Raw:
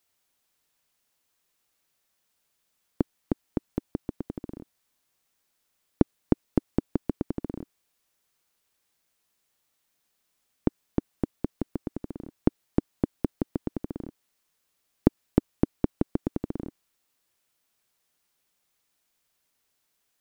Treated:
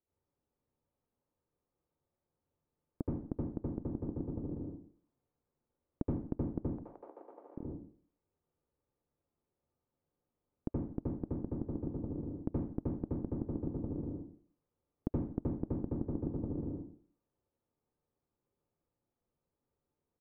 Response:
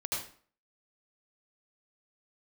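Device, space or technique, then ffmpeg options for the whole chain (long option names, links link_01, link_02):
television next door: -filter_complex "[0:a]asettb=1/sr,asplit=3[link_01][link_02][link_03];[link_01]atrim=end=6.734[link_04];[link_02]atrim=start=6.73:end=7.56,asetpts=PTS-STARTPTS,afade=type=in:duration=0.004:curve=qsin,afade=type=out:start_time=0.826:duration=0.004:curve=qsin,highpass=frequency=710:width=0.5412,highpass=frequency=710:width=1.3066[link_05];[link_03]atrim=start=7.556[link_06];[link_04][link_05]acrossfade=duration=0.004:curve1=hsin:curve2=qsin[link_07];[link_07][link_06]acrossfade=duration=0.004:curve1=qsin:curve2=hsin,acompressor=threshold=-33dB:ratio=3,lowpass=510[link_08];[1:a]atrim=start_sample=2205[link_09];[link_08][link_09]afir=irnorm=-1:irlink=0,bandreject=frequency=630:width=12,asplit=2[link_10][link_11];[link_11]adelay=84,lowpass=frequency=2000:poles=1,volume=-15.5dB,asplit=2[link_12][link_13];[link_13]adelay=84,lowpass=frequency=2000:poles=1,volume=0.31,asplit=2[link_14][link_15];[link_15]adelay=84,lowpass=frequency=2000:poles=1,volume=0.31[link_16];[link_10][link_12][link_14][link_16]amix=inputs=4:normalize=0,volume=-1dB"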